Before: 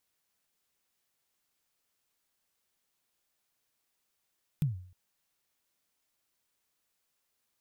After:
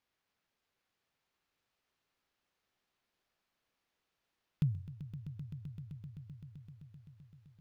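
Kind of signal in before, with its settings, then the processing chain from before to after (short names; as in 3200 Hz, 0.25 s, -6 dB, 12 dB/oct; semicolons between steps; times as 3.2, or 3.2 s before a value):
kick drum length 0.31 s, from 160 Hz, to 91 Hz, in 0.138 s, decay 0.53 s, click on, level -22 dB
median filter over 5 samples; high shelf 5700 Hz -6 dB; on a send: swelling echo 0.129 s, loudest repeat 5, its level -14 dB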